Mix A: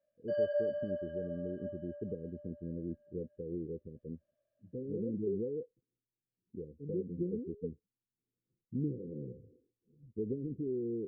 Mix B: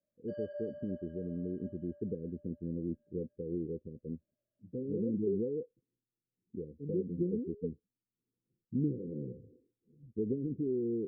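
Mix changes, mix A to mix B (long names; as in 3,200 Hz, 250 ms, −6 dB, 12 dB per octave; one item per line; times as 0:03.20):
speech: add parametric band 240 Hz +4 dB 1.6 octaves
background −10.5 dB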